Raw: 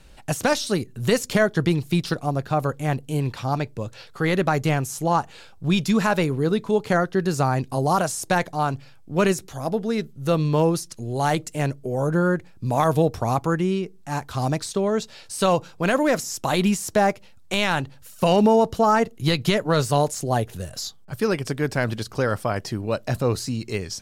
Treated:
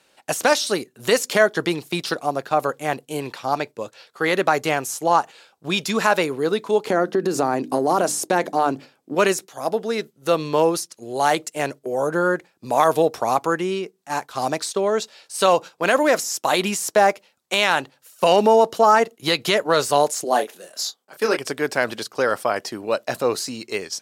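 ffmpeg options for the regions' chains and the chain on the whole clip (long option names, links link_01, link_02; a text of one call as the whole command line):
ffmpeg -i in.wav -filter_complex "[0:a]asettb=1/sr,asplit=3[link_01][link_02][link_03];[link_01]atrim=end=6.874[link_04];[link_02]atrim=start=6.87:end=9.15,asetpts=PTS-STARTPTS,afade=type=in:duration=0.004:curve=qsin,afade=type=out:start_time=2.276:duration=0.004:curve=qsin,equalizer=frequency=280:width=0.7:gain=13,bandreject=frequency=50:width_type=h:width=6,bandreject=frequency=100:width_type=h:width=6,bandreject=frequency=150:width_type=h:width=6,bandreject=frequency=200:width_type=h:width=6,bandreject=frequency=250:width_type=h:width=6,bandreject=frequency=300:width_type=h:width=6,acompressor=threshold=-15dB:ratio=12:attack=3.2:release=140:knee=1:detection=peak[link_05];[link_03]atrim=start=9.146[link_06];[link_04][link_05]acrossfade=duration=0.004:curve1=hsin:curve2=qsin[link_07];[link_07][link_06]acrossfade=duration=0.004:curve1=qsin:curve2=hsin,asettb=1/sr,asplit=3[link_08][link_09][link_10];[link_08]atrim=end=20.244[link_11];[link_09]atrim=start=20.24:end=21.37,asetpts=PTS-STARTPTS,afade=type=in:duration=0.004:curve=qsin,afade=type=out:start_time=1.126:duration=0.004:curve=qsin,highpass=frequency=210:width=0.5412,highpass=frequency=210:width=1.3066,asplit=2[link_12][link_13];[link_13]adelay=28,volume=-6.5dB[link_14];[link_12][link_14]amix=inputs=2:normalize=0,atrim=end_sample=49833[link_15];[link_10]atrim=start=21.366[link_16];[link_11][link_15]acrossfade=duration=0.004:curve1=hsin:curve2=qsin[link_17];[link_17][link_16]acrossfade=duration=0.004:curve1=qsin:curve2=hsin,agate=range=-7dB:threshold=-32dB:ratio=16:detection=peak,highpass=380,volume=4.5dB" out.wav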